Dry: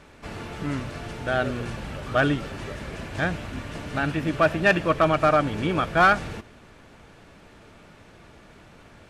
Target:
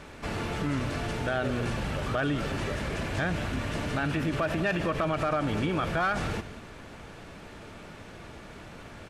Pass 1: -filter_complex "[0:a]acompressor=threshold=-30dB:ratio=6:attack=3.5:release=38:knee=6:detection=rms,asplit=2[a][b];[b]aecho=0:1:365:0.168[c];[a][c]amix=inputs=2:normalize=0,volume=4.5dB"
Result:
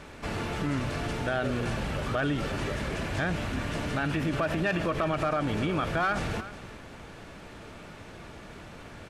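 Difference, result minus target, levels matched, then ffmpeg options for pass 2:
echo 0.169 s late
-filter_complex "[0:a]acompressor=threshold=-30dB:ratio=6:attack=3.5:release=38:knee=6:detection=rms,asplit=2[a][b];[b]aecho=0:1:196:0.168[c];[a][c]amix=inputs=2:normalize=0,volume=4.5dB"

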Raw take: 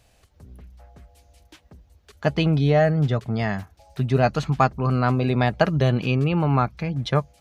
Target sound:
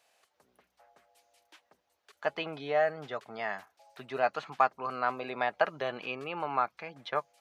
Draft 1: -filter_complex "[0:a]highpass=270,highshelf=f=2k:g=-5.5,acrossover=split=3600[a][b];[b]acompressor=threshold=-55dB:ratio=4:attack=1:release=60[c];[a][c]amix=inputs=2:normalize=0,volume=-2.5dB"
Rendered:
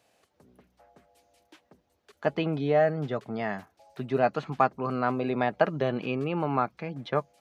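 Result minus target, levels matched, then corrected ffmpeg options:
250 Hz band +9.5 dB
-filter_complex "[0:a]highpass=730,highshelf=f=2k:g=-5.5,acrossover=split=3600[a][b];[b]acompressor=threshold=-55dB:ratio=4:attack=1:release=60[c];[a][c]amix=inputs=2:normalize=0,volume=-2.5dB"

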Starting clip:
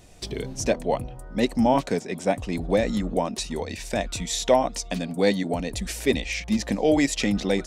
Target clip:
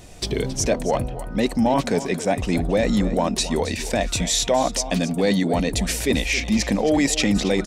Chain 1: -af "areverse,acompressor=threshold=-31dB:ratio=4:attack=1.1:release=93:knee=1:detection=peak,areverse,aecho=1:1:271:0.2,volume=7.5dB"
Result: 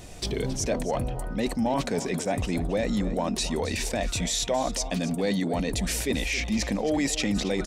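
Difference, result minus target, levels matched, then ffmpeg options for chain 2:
compressor: peak gain reduction +7 dB
-af "areverse,acompressor=threshold=-22dB:ratio=4:attack=1.1:release=93:knee=1:detection=peak,areverse,aecho=1:1:271:0.2,volume=7.5dB"

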